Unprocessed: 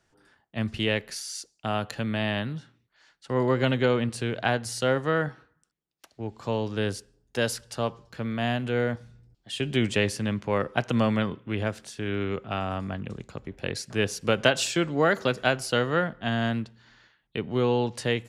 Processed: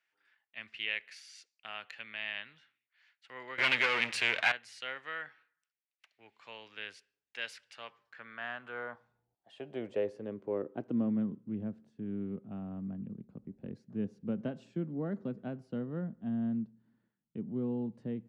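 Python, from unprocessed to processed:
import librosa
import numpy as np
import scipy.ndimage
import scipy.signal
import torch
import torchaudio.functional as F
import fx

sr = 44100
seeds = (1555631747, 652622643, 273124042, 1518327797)

y = fx.leveller(x, sr, passes=5, at=(3.58, 4.52))
y = fx.filter_sweep_bandpass(y, sr, from_hz=2300.0, to_hz=210.0, start_s=7.76, end_s=11.39, q=2.8)
y = F.gain(torch.from_numpy(y), -2.0).numpy()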